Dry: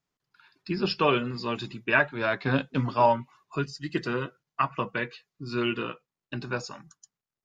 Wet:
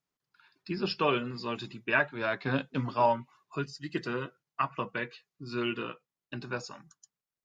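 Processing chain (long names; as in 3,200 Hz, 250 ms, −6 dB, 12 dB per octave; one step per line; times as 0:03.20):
low-shelf EQ 68 Hz −7 dB
level −4 dB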